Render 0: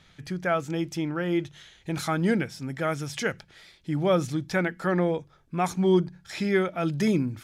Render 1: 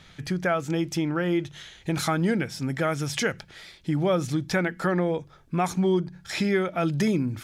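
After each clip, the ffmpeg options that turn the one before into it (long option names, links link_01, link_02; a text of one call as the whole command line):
ffmpeg -i in.wav -af "acompressor=threshold=-29dB:ratio=2.5,volume=6dB" out.wav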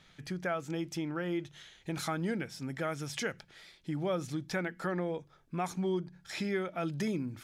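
ffmpeg -i in.wav -af "equalizer=frequency=73:width=0.96:gain=-6,volume=-9dB" out.wav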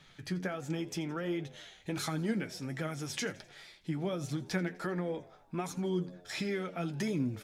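ffmpeg -i in.wav -filter_complex "[0:a]acrossover=split=380|3000[link_01][link_02][link_03];[link_02]acompressor=threshold=-39dB:ratio=6[link_04];[link_01][link_04][link_03]amix=inputs=3:normalize=0,flanger=delay=6.5:depth=5.5:regen=42:speed=1.4:shape=triangular,asplit=6[link_05][link_06][link_07][link_08][link_09][link_10];[link_06]adelay=84,afreqshift=86,volume=-21dB[link_11];[link_07]adelay=168,afreqshift=172,volume=-25.4dB[link_12];[link_08]adelay=252,afreqshift=258,volume=-29.9dB[link_13];[link_09]adelay=336,afreqshift=344,volume=-34.3dB[link_14];[link_10]adelay=420,afreqshift=430,volume=-38.7dB[link_15];[link_05][link_11][link_12][link_13][link_14][link_15]amix=inputs=6:normalize=0,volume=5.5dB" out.wav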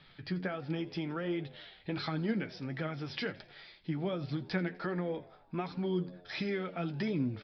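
ffmpeg -i in.wav -af "aresample=11025,aresample=44100" out.wav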